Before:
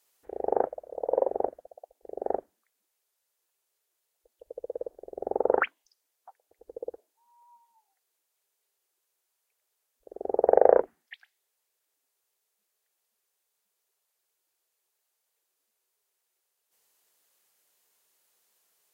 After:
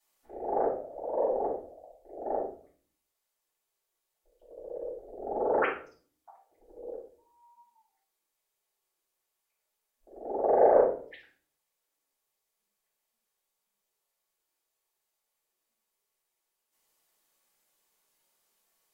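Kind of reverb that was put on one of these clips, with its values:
rectangular room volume 410 cubic metres, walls furnished, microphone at 7.9 metres
level −13 dB

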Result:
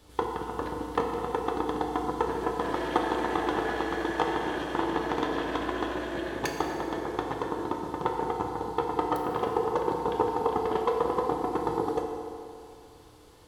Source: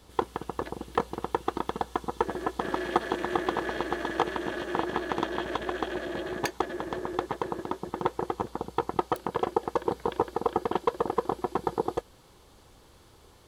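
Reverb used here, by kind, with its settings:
feedback delay network reverb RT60 2.5 s, low-frequency decay 0.9×, high-frequency decay 0.7×, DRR 0.5 dB
level −2 dB

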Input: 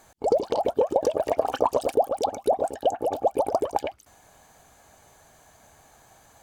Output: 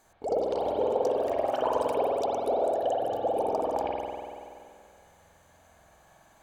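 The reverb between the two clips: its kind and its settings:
spring reverb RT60 2.3 s, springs 47 ms, chirp 50 ms, DRR −4.5 dB
level −8.5 dB

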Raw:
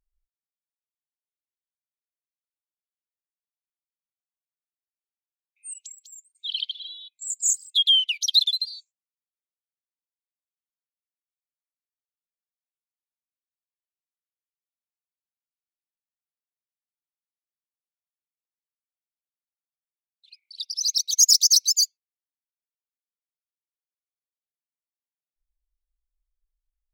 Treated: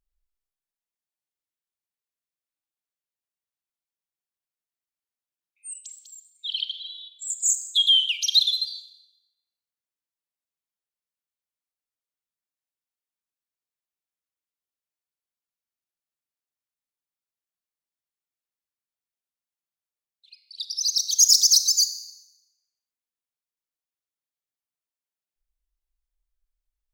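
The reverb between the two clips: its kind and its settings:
four-comb reverb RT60 0.91 s, combs from 29 ms, DRR 10.5 dB

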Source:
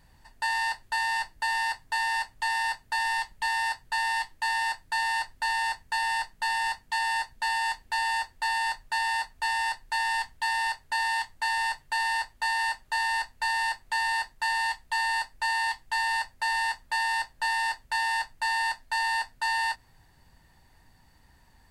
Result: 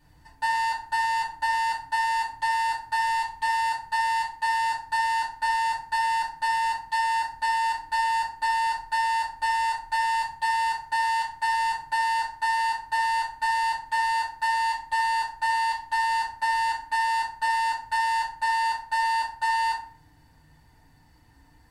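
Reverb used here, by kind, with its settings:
feedback delay network reverb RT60 0.49 s, low-frequency decay 1.6×, high-frequency decay 0.6×, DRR −6.5 dB
level −6.5 dB

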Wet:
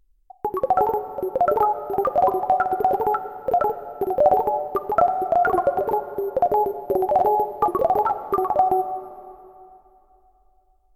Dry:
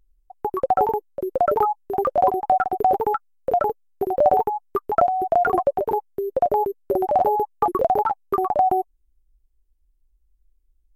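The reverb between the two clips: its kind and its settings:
dense smooth reverb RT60 2.9 s, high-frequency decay 0.9×, DRR 10.5 dB

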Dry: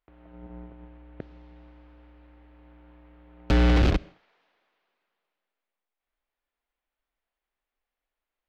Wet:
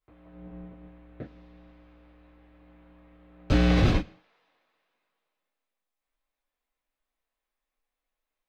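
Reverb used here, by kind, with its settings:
reverb whose tail is shaped and stops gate 80 ms falling, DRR −7.5 dB
level −8.5 dB

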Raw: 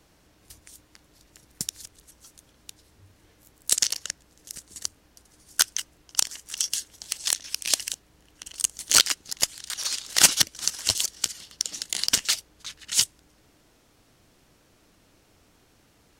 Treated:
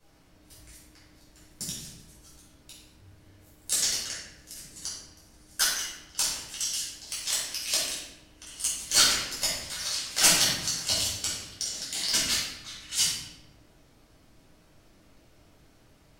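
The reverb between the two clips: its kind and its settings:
rectangular room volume 430 cubic metres, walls mixed, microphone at 5.3 metres
level −12.5 dB

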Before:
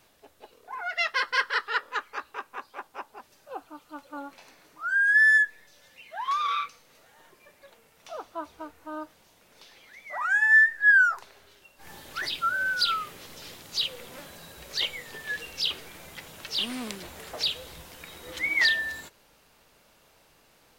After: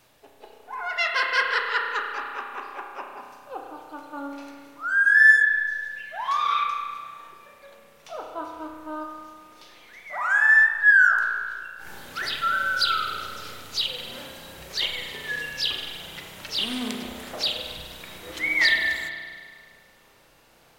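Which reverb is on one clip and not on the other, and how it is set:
spring reverb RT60 1.8 s, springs 32 ms, chirp 20 ms, DRR 1.5 dB
level +1.5 dB

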